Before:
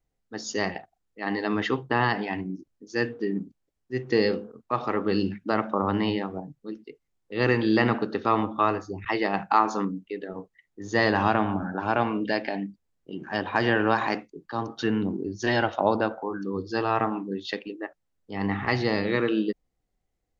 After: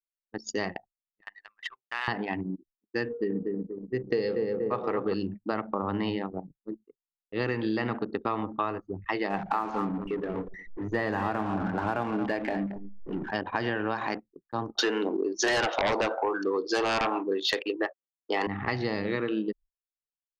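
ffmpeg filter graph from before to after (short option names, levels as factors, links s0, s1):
-filter_complex "[0:a]asettb=1/sr,asplit=3[s0][s1][s2];[s0]atrim=end=1.214[s3];[s1]atrim=start=1.21:end=2.08,asetpts=PTS-STARTPTS,afade=t=in:d=0.004:c=qsin,afade=t=out:st=0.866:d=0.004:c=qsin,aeval=exprs='if(lt(val(0),0),0.447*val(0),val(0))':c=same,highpass=1500[s4];[s2]atrim=start=2.076[s5];[s3][s4]acrossfade=d=0.004:c1=hsin:c2=qsin[s6];[s6][s5]acrossfade=d=0.004:c1=qsin:c2=hsin,asettb=1/sr,asplit=3[s7][s8][s9];[s7]atrim=end=3.064[s10];[s8]atrim=start=3.06:end=5.14,asetpts=PTS-STARTPTS,afade=t=in:d=0.004:c=qsin,afade=t=out:st=2.076:d=0.004:c=qsin,equalizer=f=470:w=4:g=8,asplit=2[s11][s12];[s12]adelay=238,lowpass=f=1400:p=1,volume=0.596,asplit=2[s13][s14];[s14]adelay=238,lowpass=f=1400:p=1,volume=0.53,asplit=2[s15][s16];[s16]adelay=238,lowpass=f=1400:p=1,volume=0.53,asplit=2[s17][s18];[s18]adelay=238,lowpass=f=1400:p=1,volume=0.53,asplit=2[s19][s20];[s20]adelay=238,lowpass=f=1400:p=1,volume=0.53,asplit=2[s21][s22];[s22]adelay=238,lowpass=f=1400:p=1,volume=0.53,asplit=2[s23][s24];[s24]adelay=238,lowpass=f=1400:p=1,volume=0.53[s25];[s11][s13][s15][s17][s19][s21][s23][s25]amix=inputs=8:normalize=0,atrim=end_sample=91728[s26];[s9]atrim=start=5.136[s27];[s10][s26]acrossfade=d=0.004:c1=hsin:c2=qsin[s28];[s28][s27]acrossfade=d=0.004:c1=qsin:c2=hsin,asettb=1/sr,asplit=3[s29][s30][s31];[s29]atrim=end=9.304[s32];[s30]atrim=start=9.3:end=13.31,asetpts=PTS-STARTPTS,afade=t=in:d=0.004:c=qsin,afade=t=out:st=4.006:d=0.004:c=qsin,aeval=exprs='val(0)+0.5*0.0251*sgn(val(0))':c=same,acrossover=split=2800[s33][s34];[s34]acompressor=threshold=0.00562:ratio=4:attack=1:release=60[s35];[s33][s35]amix=inputs=2:normalize=0,aecho=1:1:227:0.266,atrim=end_sample=176841[s36];[s31]atrim=start=13.306[s37];[s32][s36]acrossfade=d=0.004:c1=hsin:c2=qsin[s38];[s38][s37]acrossfade=d=0.004:c1=qsin:c2=hsin,asettb=1/sr,asplit=3[s39][s40][s41];[s39]atrim=end=14.754[s42];[s40]atrim=start=14.75:end=18.47,asetpts=PTS-STARTPTS,afade=t=in:d=0.004:c=qsin,afade=t=out:st=3.716:d=0.004:c=qsin,highpass=f=370:w=0.5412,highpass=f=370:w=1.3066,aeval=exprs='0.355*sin(PI/2*3.98*val(0)/0.355)':c=same[s43];[s41]atrim=start=18.466[s44];[s42][s43]acrossfade=d=0.004:c1=hsin:c2=qsin[s45];[s45][s44]acrossfade=d=0.004:c1=qsin:c2=hsin,anlmdn=15.8,agate=range=0.0224:threshold=0.00891:ratio=3:detection=peak,acompressor=threshold=0.0562:ratio=6"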